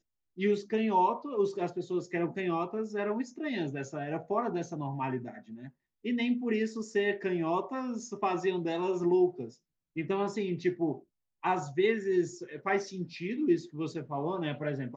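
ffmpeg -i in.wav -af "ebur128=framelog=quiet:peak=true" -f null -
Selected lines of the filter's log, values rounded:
Integrated loudness:
  I:         -31.9 LUFS
  Threshold: -42.2 LUFS
Loudness range:
  LRA:         3.1 LU
  Threshold: -52.4 LUFS
  LRA low:   -34.2 LUFS
  LRA high:  -31.2 LUFS
True peak:
  Peak:      -15.6 dBFS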